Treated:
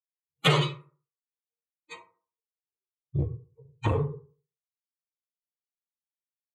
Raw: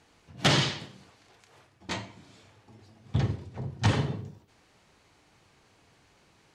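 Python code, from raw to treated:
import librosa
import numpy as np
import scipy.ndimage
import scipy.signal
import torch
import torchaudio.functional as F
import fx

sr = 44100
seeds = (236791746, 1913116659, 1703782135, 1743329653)

y = fx.bin_expand(x, sr, power=3.0)
y = fx.fixed_phaser(y, sr, hz=1100.0, stages=8)
y = fx.rev_fdn(y, sr, rt60_s=0.41, lf_ratio=1.0, hf_ratio=0.45, size_ms=38.0, drr_db=-4.0)
y = fx.transformer_sat(y, sr, knee_hz=630.0)
y = F.gain(torch.from_numpy(y), 5.5).numpy()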